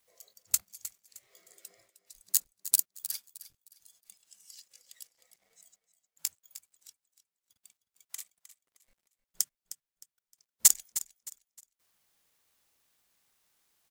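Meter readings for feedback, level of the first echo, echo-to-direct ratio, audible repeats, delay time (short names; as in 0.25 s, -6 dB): 29%, -14.0 dB, -13.5 dB, 2, 0.309 s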